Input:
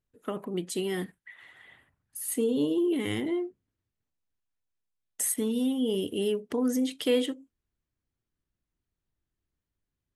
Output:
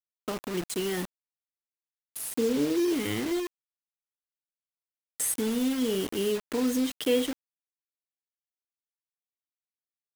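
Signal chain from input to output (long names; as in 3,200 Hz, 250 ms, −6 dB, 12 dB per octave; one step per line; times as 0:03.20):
0:02.28–0:02.90: high shelf with overshoot 1,700 Hz −7 dB, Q 1.5
bit reduction 6 bits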